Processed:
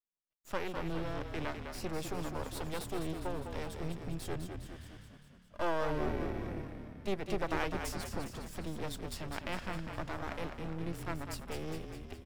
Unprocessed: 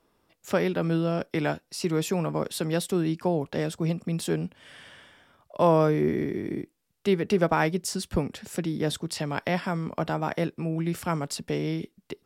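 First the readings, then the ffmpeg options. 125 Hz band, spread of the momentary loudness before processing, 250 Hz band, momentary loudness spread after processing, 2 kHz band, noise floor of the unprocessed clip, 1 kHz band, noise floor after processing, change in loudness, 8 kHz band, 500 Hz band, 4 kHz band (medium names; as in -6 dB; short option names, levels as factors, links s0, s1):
-12.0 dB, 9 LU, -13.0 dB, 9 LU, -8.0 dB, -71 dBFS, -9.5 dB, -60 dBFS, -12.0 dB, -11.0 dB, -12.5 dB, -9.5 dB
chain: -filter_complex "[0:a]aeval=exprs='max(val(0),0)':c=same,agate=range=0.0224:threshold=0.00251:ratio=3:detection=peak,asplit=9[s0][s1][s2][s3][s4][s5][s6][s7][s8];[s1]adelay=204,afreqshift=-36,volume=0.473[s9];[s2]adelay=408,afreqshift=-72,volume=0.288[s10];[s3]adelay=612,afreqshift=-108,volume=0.176[s11];[s4]adelay=816,afreqshift=-144,volume=0.107[s12];[s5]adelay=1020,afreqshift=-180,volume=0.0653[s13];[s6]adelay=1224,afreqshift=-216,volume=0.0398[s14];[s7]adelay=1428,afreqshift=-252,volume=0.0243[s15];[s8]adelay=1632,afreqshift=-288,volume=0.0148[s16];[s0][s9][s10][s11][s12][s13][s14][s15][s16]amix=inputs=9:normalize=0,volume=0.422"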